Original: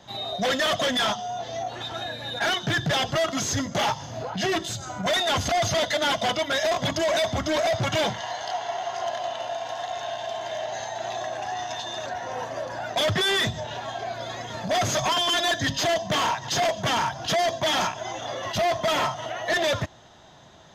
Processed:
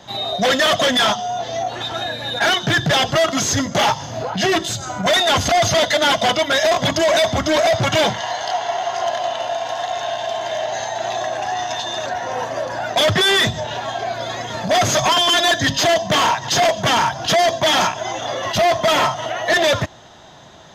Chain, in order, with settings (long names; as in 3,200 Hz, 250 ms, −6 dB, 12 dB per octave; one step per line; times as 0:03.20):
low-shelf EQ 150 Hz −3 dB
level +8 dB